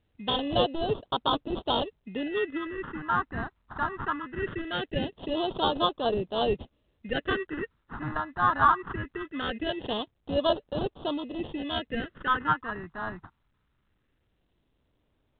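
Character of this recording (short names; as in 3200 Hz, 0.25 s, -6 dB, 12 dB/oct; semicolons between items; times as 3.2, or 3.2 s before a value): aliases and images of a low sample rate 2300 Hz, jitter 0%; phasing stages 4, 0.21 Hz, lowest notch 510–1900 Hz; µ-law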